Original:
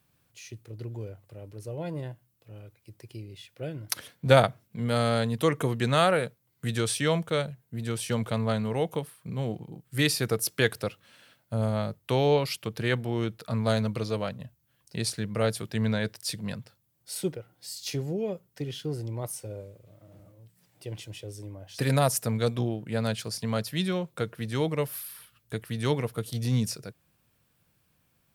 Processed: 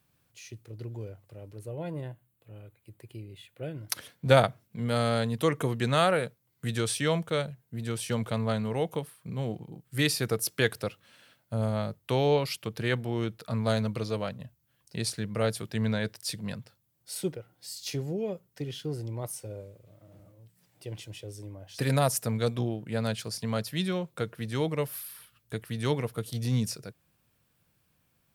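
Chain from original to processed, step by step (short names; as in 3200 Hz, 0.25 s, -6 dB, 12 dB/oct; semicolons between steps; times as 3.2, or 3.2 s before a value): 1.59–3.76 bell 5400 Hz -12.5 dB 0.46 oct; gain -1.5 dB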